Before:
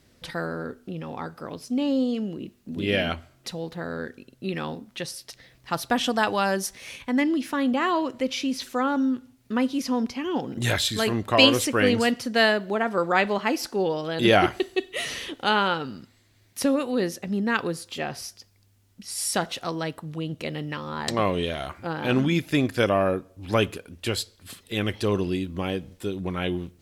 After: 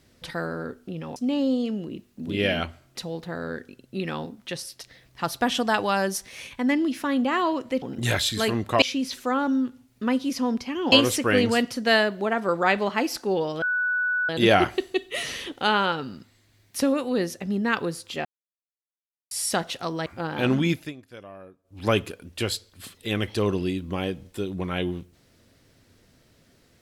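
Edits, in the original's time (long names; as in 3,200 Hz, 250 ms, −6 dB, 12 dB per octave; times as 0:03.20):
0:01.16–0:01.65: remove
0:10.41–0:11.41: move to 0:08.31
0:14.11: insert tone 1,480 Hz −21.5 dBFS 0.67 s
0:18.07–0:19.13: silence
0:19.88–0:21.72: remove
0:22.38–0:23.51: duck −21.5 dB, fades 0.21 s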